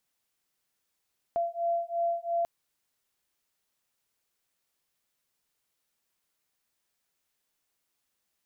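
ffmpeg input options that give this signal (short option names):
-f lavfi -i "aevalsrc='0.0316*(sin(2*PI*681*t)+sin(2*PI*683.9*t))':d=1.09:s=44100"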